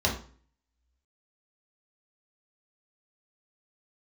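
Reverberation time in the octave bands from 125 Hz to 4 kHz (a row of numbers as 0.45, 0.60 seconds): 0.55, 0.55, 0.45, 0.45, 0.40, 0.35 seconds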